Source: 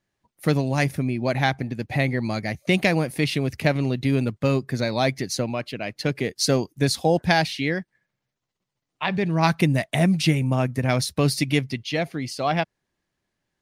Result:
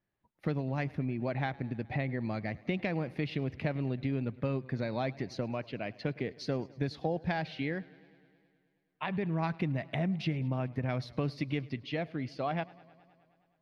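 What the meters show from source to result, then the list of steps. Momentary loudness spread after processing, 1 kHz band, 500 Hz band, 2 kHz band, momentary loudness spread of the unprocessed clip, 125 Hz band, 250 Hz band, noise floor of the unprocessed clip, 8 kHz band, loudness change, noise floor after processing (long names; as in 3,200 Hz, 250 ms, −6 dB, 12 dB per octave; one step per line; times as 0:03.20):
4 LU, −12.0 dB, −11.5 dB, −13.5 dB, 7 LU, −10.5 dB, −10.5 dB, −82 dBFS, below −25 dB, −11.5 dB, −76 dBFS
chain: downward compressor 3 to 1, threshold −24 dBFS, peak gain reduction 8 dB
high-frequency loss of the air 290 metres
feedback echo with a swinging delay time 105 ms, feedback 73%, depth 87 cents, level −23 dB
level −5.5 dB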